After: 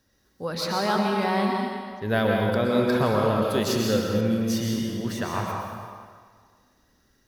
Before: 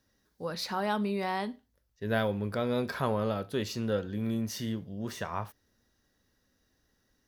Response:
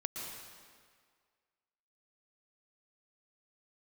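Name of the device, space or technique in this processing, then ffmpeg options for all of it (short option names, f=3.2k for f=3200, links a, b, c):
stairwell: -filter_complex "[1:a]atrim=start_sample=2205[a];[0:a][a]afir=irnorm=-1:irlink=0,asettb=1/sr,asplit=3[b][c][d];[b]atrim=end=3.424[e];[c]atrim=start=3.42:end=4.21,asetpts=PTS-STARTPTS,afade=t=in:d=0.004:c=qsin,afade=t=out:st=0.786:d=0.004:c=qsin,highshelf=f=5.4k:g=8.5[f];[d]atrim=start=4.206[g];[e][f]acrossfade=d=0.004:c1=hsin:c2=qsin[h];[h][g]acrossfade=d=0.004:c1=qsin:c2=hsin,volume=7dB"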